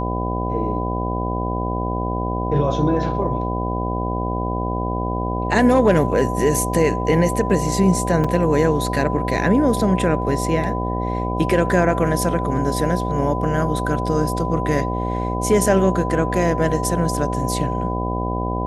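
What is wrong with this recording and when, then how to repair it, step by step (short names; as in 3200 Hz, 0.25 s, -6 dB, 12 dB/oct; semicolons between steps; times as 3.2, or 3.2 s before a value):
buzz 60 Hz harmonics 13 -24 dBFS
tone 1000 Hz -26 dBFS
8.24 gap 4.6 ms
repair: notch 1000 Hz, Q 30; de-hum 60 Hz, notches 13; interpolate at 8.24, 4.6 ms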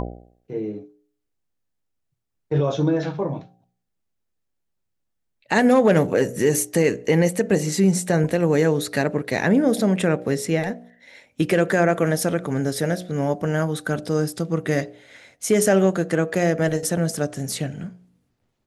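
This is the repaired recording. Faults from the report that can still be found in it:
none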